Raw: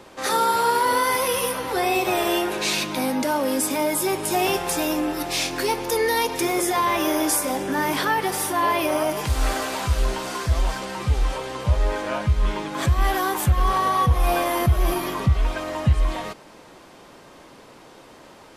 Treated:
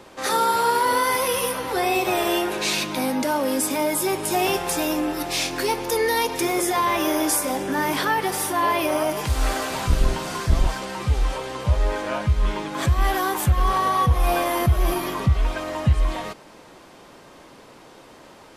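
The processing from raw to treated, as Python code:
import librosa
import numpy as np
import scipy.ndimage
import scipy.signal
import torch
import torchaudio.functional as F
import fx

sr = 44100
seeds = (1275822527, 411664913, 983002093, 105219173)

y = fx.octave_divider(x, sr, octaves=1, level_db=0.0, at=(9.7, 10.67))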